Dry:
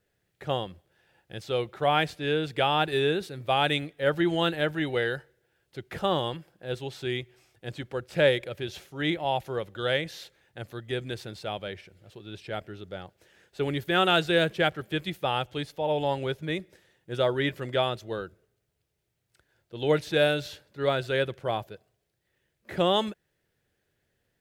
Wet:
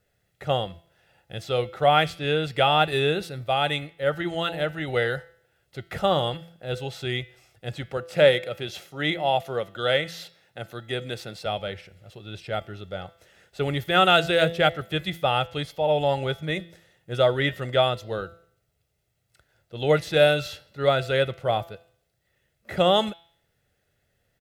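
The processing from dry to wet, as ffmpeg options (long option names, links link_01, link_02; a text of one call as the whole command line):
ffmpeg -i in.wav -filter_complex "[0:a]asettb=1/sr,asplit=3[link_01][link_02][link_03];[link_01]atrim=end=7.974[link_04];[link_02]atrim=start=7.97:end=11.46,asetpts=PTS-STARTPTS,afade=type=in:duration=0.004:curve=qsin,afade=type=out:start_time=3.486:duration=0.004:curve=qsin,highpass=140[link_05];[link_03]atrim=start=11.456[link_06];[link_04][link_05]acrossfade=duration=0.004:curve1=hsin:curve2=qsin[link_07];[link_07][link_06]acrossfade=duration=0.004:curve1=qsin:curve2=hsin,asplit=3[link_08][link_09][link_10];[link_08]atrim=end=3.442[link_11];[link_09]atrim=start=3.438:end=4.882,asetpts=PTS-STARTPTS,volume=-4dB[link_12];[link_10]atrim=start=4.878[link_13];[link_11][link_12]acrossfade=duration=0.004:curve1=hsin:curve2=hsin[link_14];[link_14][link_13]acrossfade=duration=0.004:curve1=hsin:curve2=hsin,aecho=1:1:1.5:0.41,bandreject=frequency=168.1:width_type=h:width=4,bandreject=frequency=336.2:width_type=h:width=4,bandreject=frequency=504.3:width_type=h:width=4,bandreject=frequency=672.4:width_type=h:width=4,bandreject=frequency=840.5:width_type=h:width=4,bandreject=frequency=1008.6:width_type=h:width=4,bandreject=frequency=1176.7:width_type=h:width=4,bandreject=frequency=1344.8:width_type=h:width=4,bandreject=frequency=1512.9:width_type=h:width=4,bandreject=frequency=1681:width_type=h:width=4,bandreject=frequency=1849.1:width_type=h:width=4,bandreject=frequency=2017.2:width_type=h:width=4,bandreject=frequency=2185.3:width_type=h:width=4,bandreject=frequency=2353.4:width_type=h:width=4,bandreject=frequency=2521.5:width_type=h:width=4,bandreject=frequency=2689.6:width_type=h:width=4,bandreject=frequency=2857.7:width_type=h:width=4,bandreject=frequency=3025.8:width_type=h:width=4,bandreject=frequency=3193.9:width_type=h:width=4,bandreject=frequency=3362:width_type=h:width=4,bandreject=frequency=3530.1:width_type=h:width=4,bandreject=frequency=3698.2:width_type=h:width=4,bandreject=frequency=3866.3:width_type=h:width=4,bandreject=frequency=4034.4:width_type=h:width=4,bandreject=frequency=4202.5:width_type=h:width=4,bandreject=frequency=4370.6:width_type=h:width=4,bandreject=frequency=4538.7:width_type=h:width=4,bandreject=frequency=4706.8:width_type=h:width=4,bandreject=frequency=4874.9:width_type=h:width=4,bandreject=frequency=5043:width_type=h:width=4,bandreject=frequency=5211.1:width_type=h:width=4,bandreject=frequency=5379.2:width_type=h:width=4,bandreject=frequency=5547.3:width_type=h:width=4,bandreject=frequency=5715.4:width_type=h:width=4,volume=3.5dB" out.wav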